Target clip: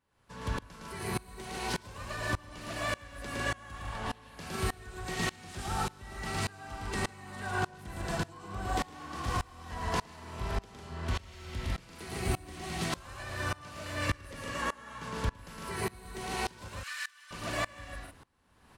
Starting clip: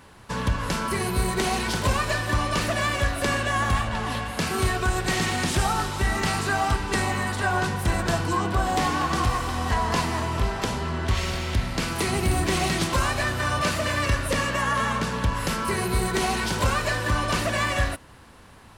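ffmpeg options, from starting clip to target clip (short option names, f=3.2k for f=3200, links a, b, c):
-filter_complex "[0:a]asettb=1/sr,asplit=3[a][b][c];[a]atrim=end=16.684[d];[b]atrim=start=16.68:end=17.31,asetpts=PTS-STARTPTS,afade=t=in:d=0.004:c=qsin,afade=t=out:st=0.626:d=0.004:c=qsin,highpass=f=1.5k:w=0.5412,highpass=f=1.5k:w=1.3066[e];[c]atrim=start=17.306[f];[d][e]acrossfade=d=0.004:c1=hsin:c2=qsin[g];[g][f]acrossfade=d=0.004:c1=qsin:c2=hsin,aecho=1:1:110.8|151.6:0.708|0.562,aeval=exprs='val(0)*pow(10,-25*if(lt(mod(-1.7*n/s,1),2*abs(-1.7)/1000),1-mod(-1.7*n/s,1)/(2*abs(-1.7)/1000),(mod(-1.7*n/s,1)-2*abs(-1.7)/1000)/(1-2*abs(-1.7)/1000))/20)':c=same,volume=-7dB"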